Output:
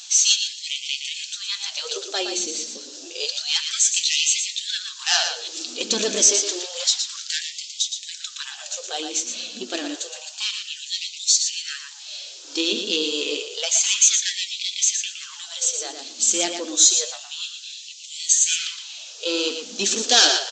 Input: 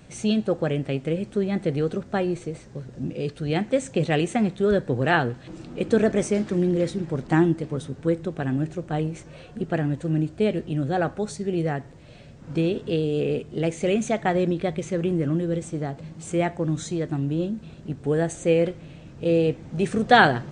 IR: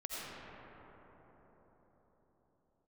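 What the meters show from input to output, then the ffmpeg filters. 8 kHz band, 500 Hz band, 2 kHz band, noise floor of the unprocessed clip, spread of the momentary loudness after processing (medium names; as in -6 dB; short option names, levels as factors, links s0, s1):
+24.0 dB, -8.5 dB, -1.0 dB, -46 dBFS, 16 LU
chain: -filter_complex "[0:a]acrossover=split=1500[s0][s1];[s1]acontrast=78[s2];[s0][s2]amix=inputs=2:normalize=0,asoftclip=type=tanh:threshold=0.158,aeval=exprs='val(0)+0.00891*(sin(2*PI*60*n/s)+sin(2*PI*2*60*n/s)/2+sin(2*PI*3*60*n/s)/3+sin(2*PI*4*60*n/s)/4+sin(2*PI*5*60*n/s)/5)':c=same,bandreject=f=70.71:t=h:w=4,bandreject=f=141.42:t=h:w=4,bandreject=f=212.13:t=h:w=4,bandreject=f=282.84:t=h:w=4,bandreject=f=353.55:t=h:w=4,bandreject=f=424.26:t=h:w=4,bandreject=f=494.97:t=h:w=4,bandreject=f=565.68:t=h:w=4,bandreject=f=636.39:t=h:w=4,bandreject=f=707.1:t=h:w=4,bandreject=f=777.81:t=h:w=4,bandreject=f=848.52:t=h:w=4,aexciter=amount=5.2:drive=9.9:freq=3100,aresample=16000,aresample=44100,flanger=delay=3.9:depth=6.8:regen=55:speed=0.86:shape=triangular,aecho=1:1:117|234|351:0.447|0.0715|0.0114,afftfilt=real='re*gte(b*sr/1024,200*pow(2000/200,0.5+0.5*sin(2*PI*0.29*pts/sr)))':imag='im*gte(b*sr/1024,200*pow(2000/200,0.5+0.5*sin(2*PI*0.29*pts/sr)))':win_size=1024:overlap=0.75,volume=1.19"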